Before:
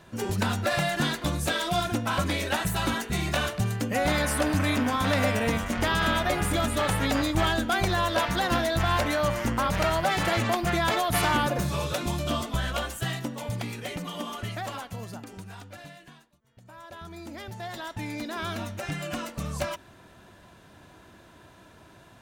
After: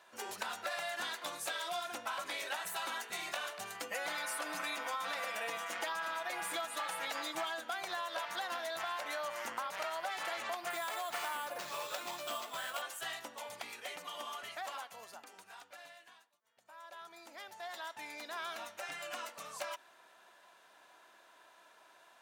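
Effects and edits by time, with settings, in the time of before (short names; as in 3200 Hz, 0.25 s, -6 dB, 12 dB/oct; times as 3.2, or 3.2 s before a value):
3.74–7.61 comb 6 ms, depth 71%
10.7–12.82 careless resampling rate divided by 4×, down none, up hold
whole clip: Chebyshev high-pass 790 Hz, order 2; compressor, threshold -30 dBFS; gain -5.5 dB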